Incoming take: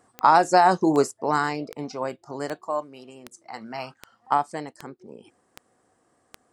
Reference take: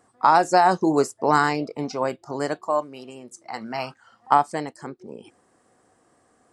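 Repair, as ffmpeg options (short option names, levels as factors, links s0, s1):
-af "adeclick=t=4,asetnsamples=n=441:p=0,asendcmd='1.11 volume volume 4.5dB',volume=1"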